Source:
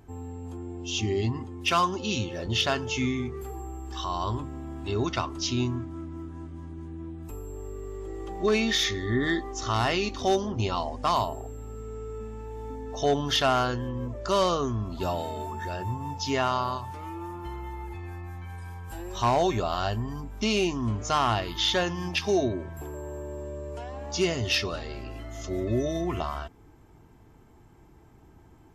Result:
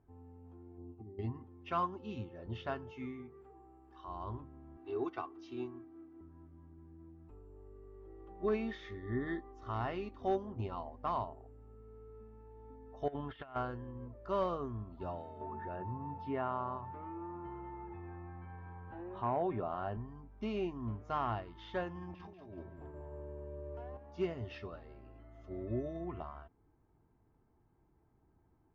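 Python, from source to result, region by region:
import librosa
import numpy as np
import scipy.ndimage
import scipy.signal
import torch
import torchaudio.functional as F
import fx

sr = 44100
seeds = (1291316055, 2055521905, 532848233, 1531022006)

y = fx.chain(x, sr, fx.over_compress(threshold_db=-32.0, ratio=-1.0),
    fx.gaussian_blur(sigma=7.6), at=(0.78, 1.19))
y = fx.chain(y, sr, fx.highpass(hz=230.0, slope=6),
    fx.notch(hz=3400.0, q=30.0), at=(2.91, 4.08))
y = fx.chain(y, sr, fx.highpass(hz=240.0, slope=12),
    fx.comb(ms=2.6, depth=0.7), at=(4.77, 6.21))
y = fx.chain(y, sr, fx.lowpass(hz=3300.0, slope=24),
    fx.tilt_shelf(db=-4.0, hz=1400.0),
    fx.over_compress(threshold_db=-29.0, ratio=-0.5), at=(13.08, 13.56))
y = fx.chain(y, sr, fx.highpass(hz=120.0, slope=12),
    fx.air_absorb(metres=350.0),
    fx.env_flatten(amount_pct=50), at=(15.41, 19.97))
y = fx.chain(y, sr, fx.over_compress(threshold_db=-33.0, ratio=-1.0),
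    fx.echo_feedback(ms=189, feedback_pct=30, wet_db=-7), at=(21.95, 23.97))
y = scipy.signal.sosfilt(scipy.signal.butter(2, 1600.0, 'lowpass', fs=sr, output='sos'), y)
y = fx.upward_expand(y, sr, threshold_db=-37.0, expansion=1.5)
y = F.gain(torch.from_numpy(y), -8.5).numpy()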